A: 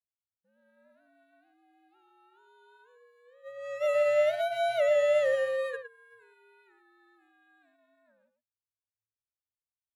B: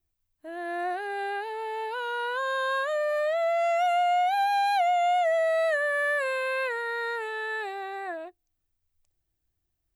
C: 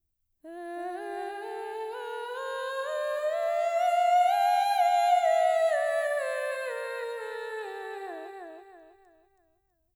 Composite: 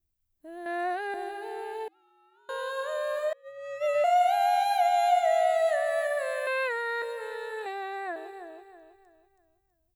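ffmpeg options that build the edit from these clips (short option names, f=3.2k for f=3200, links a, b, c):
-filter_complex "[1:a]asplit=3[a][b][c];[0:a]asplit=2[d][e];[2:a]asplit=6[f][g][h][i][j][k];[f]atrim=end=0.662[l];[a]atrim=start=0.658:end=1.142[m];[g]atrim=start=1.138:end=1.882[n];[d]atrim=start=1.878:end=2.492[o];[h]atrim=start=2.488:end=3.332[p];[e]atrim=start=3.328:end=4.042[q];[i]atrim=start=4.038:end=6.472[r];[b]atrim=start=6.468:end=7.022[s];[j]atrim=start=7.018:end=7.662[t];[c]atrim=start=7.658:end=8.162[u];[k]atrim=start=8.158[v];[l][m]acrossfade=d=0.004:c1=hsin:c2=hsin[w];[w][n]acrossfade=d=0.004:c1=hsin:c2=hsin[x];[x][o]acrossfade=d=0.004:c1=hsin:c2=hsin[y];[y][p]acrossfade=d=0.004:c1=hsin:c2=hsin[z];[z][q]acrossfade=d=0.004:c1=hsin:c2=hsin[aa];[aa][r]acrossfade=d=0.004:c1=hsin:c2=hsin[ab];[ab][s]acrossfade=d=0.004:c1=hsin:c2=hsin[ac];[ac][t]acrossfade=d=0.004:c1=hsin:c2=hsin[ad];[ad][u]acrossfade=d=0.004:c1=hsin:c2=hsin[ae];[ae][v]acrossfade=d=0.004:c1=hsin:c2=hsin"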